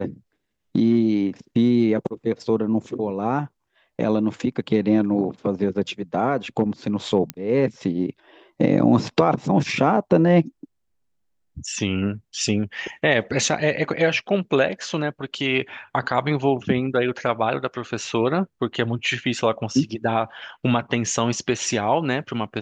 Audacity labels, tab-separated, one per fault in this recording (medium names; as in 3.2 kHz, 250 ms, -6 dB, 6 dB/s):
7.300000	7.300000	pop -11 dBFS